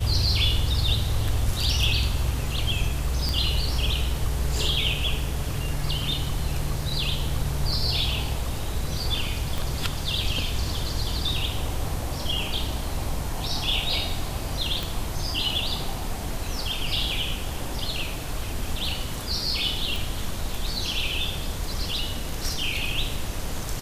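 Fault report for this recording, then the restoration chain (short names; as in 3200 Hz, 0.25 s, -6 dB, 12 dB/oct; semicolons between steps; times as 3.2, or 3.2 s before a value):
3.29 pop
9.58 pop
14.83 pop
19.96 pop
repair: de-click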